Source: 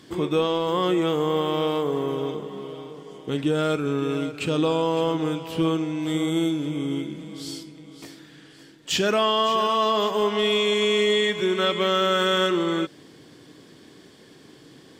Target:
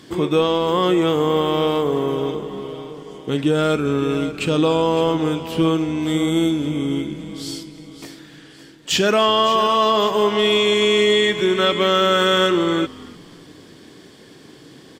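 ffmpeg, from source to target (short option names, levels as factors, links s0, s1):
-filter_complex "[0:a]asplit=4[s0][s1][s2][s3];[s1]adelay=292,afreqshift=-80,volume=0.0891[s4];[s2]adelay=584,afreqshift=-160,volume=0.0302[s5];[s3]adelay=876,afreqshift=-240,volume=0.0104[s6];[s0][s4][s5][s6]amix=inputs=4:normalize=0,volume=1.78"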